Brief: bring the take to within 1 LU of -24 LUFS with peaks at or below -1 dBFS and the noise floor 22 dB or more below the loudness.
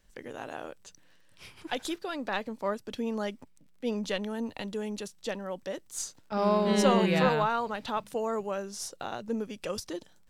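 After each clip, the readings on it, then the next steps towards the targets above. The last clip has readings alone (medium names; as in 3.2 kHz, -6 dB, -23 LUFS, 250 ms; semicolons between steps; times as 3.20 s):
tick rate 36 per s; loudness -31.5 LUFS; peak level -12.0 dBFS; loudness target -24.0 LUFS
-> de-click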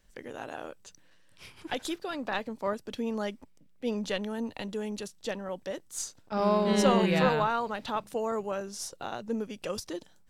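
tick rate 0.39 per s; loudness -31.5 LUFS; peak level -12.0 dBFS; loudness target -24.0 LUFS
-> trim +7.5 dB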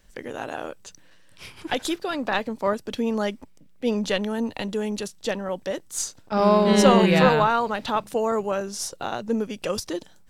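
loudness -24.0 LUFS; peak level -4.5 dBFS; noise floor -51 dBFS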